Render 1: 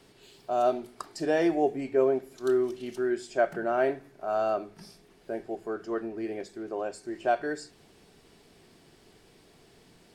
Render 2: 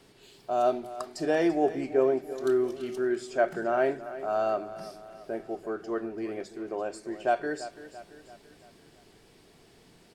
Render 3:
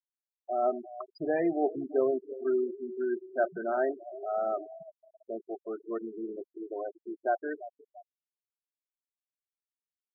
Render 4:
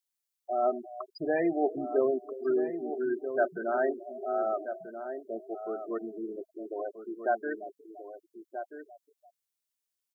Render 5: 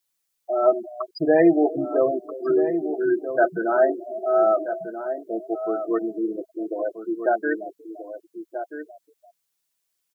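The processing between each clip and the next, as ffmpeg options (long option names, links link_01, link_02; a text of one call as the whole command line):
ffmpeg -i in.wav -af "aecho=1:1:338|676|1014|1352|1690:0.188|0.0942|0.0471|0.0235|0.0118" out.wav
ffmpeg -i in.wav -af "afftfilt=real='re*gte(hypot(re,im),0.0562)':imag='im*gte(hypot(re,im),0.0562)':win_size=1024:overlap=0.75,volume=-3dB" out.wav
ffmpeg -i in.wav -filter_complex "[0:a]highshelf=frequency=3000:gain=11,asplit=2[link_01][link_02];[link_02]adelay=1283,volume=-9dB,highshelf=frequency=4000:gain=-28.9[link_03];[link_01][link_03]amix=inputs=2:normalize=0" out.wav
ffmpeg -i in.wav -af "aecho=1:1:6.1:0.9,volume=7dB" out.wav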